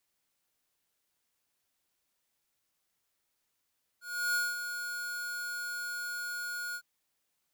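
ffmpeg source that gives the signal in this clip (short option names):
-f lavfi -i "aevalsrc='0.0355*(2*lt(mod(1440*t,1),0.5)-1)':d=2.806:s=44100,afade=t=in:d=0.336,afade=t=out:st=0.336:d=0.205:silence=0.376,afade=t=out:st=2.74:d=0.066"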